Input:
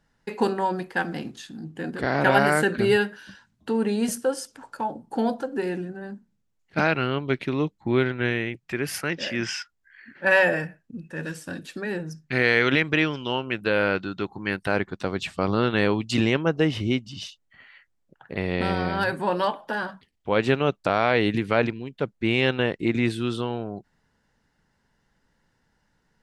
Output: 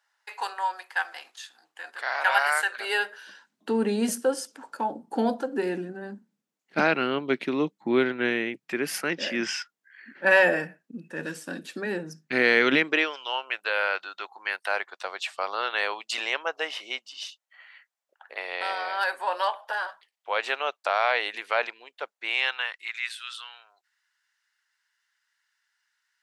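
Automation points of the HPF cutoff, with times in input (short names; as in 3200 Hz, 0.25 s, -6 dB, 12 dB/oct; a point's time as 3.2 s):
HPF 24 dB/oct
2.7 s 820 Hz
3.76 s 200 Hz
12.77 s 200 Hz
13.19 s 640 Hz
22.19 s 640 Hz
23.01 s 1400 Hz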